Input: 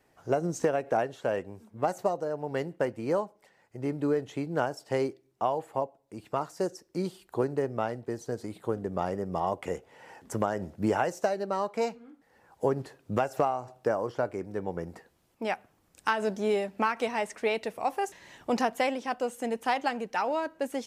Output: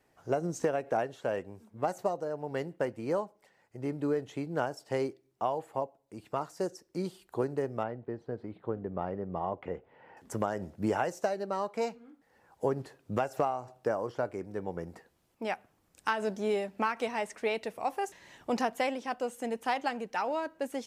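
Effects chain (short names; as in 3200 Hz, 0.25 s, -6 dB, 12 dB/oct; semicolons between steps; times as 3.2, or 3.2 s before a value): 7.83–10.17 air absorption 430 m; gain -3 dB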